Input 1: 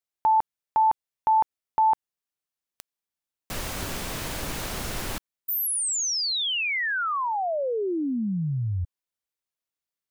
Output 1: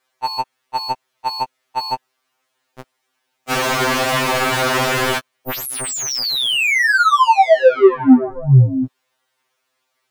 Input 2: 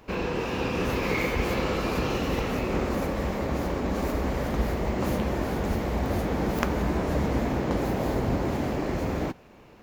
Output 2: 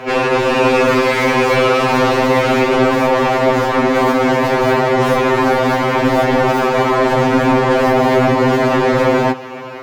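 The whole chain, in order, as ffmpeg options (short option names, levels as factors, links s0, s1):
-filter_complex "[0:a]tremolo=f=170:d=0.462,asplit=2[s0][s1];[s1]highpass=f=720:p=1,volume=56.2,asoftclip=type=tanh:threshold=0.398[s2];[s0][s2]amix=inputs=2:normalize=0,lowpass=f=1400:p=1,volume=0.501,afftfilt=real='re*2.45*eq(mod(b,6),0)':imag='im*2.45*eq(mod(b,6),0)':win_size=2048:overlap=0.75,volume=2"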